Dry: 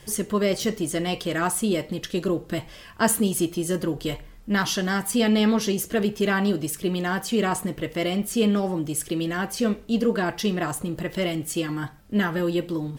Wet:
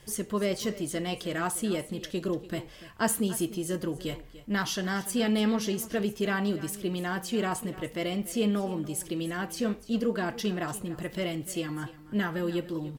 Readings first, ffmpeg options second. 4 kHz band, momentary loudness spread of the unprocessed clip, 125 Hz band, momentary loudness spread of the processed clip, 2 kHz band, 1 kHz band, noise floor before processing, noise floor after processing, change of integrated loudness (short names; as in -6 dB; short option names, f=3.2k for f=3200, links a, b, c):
-6.0 dB, 7 LU, -6.0 dB, 7 LU, -6.0 dB, -6.0 dB, -46 dBFS, -49 dBFS, -6.0 dB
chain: -af "aecho=1:1:292:0.15,volume=-6dB"